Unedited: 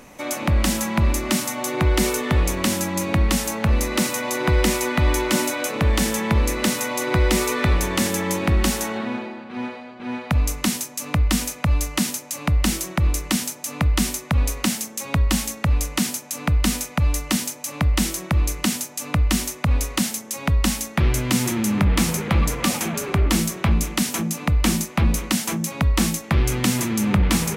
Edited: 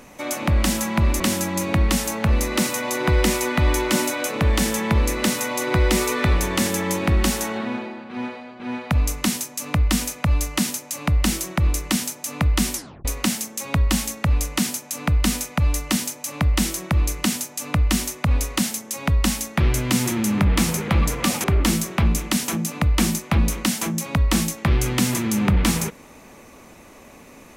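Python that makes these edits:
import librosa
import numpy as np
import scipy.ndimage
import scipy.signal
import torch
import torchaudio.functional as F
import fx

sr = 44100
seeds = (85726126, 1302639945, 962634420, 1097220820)

y = fx.edit(x, sr, fx.cut(start_s=1.2, length_s=1.4),
    fx.tape_stop(start_s=14.15, length_s=0.3),
    fx.cut(start_s=22.84, length_s=0.26), tone=tone)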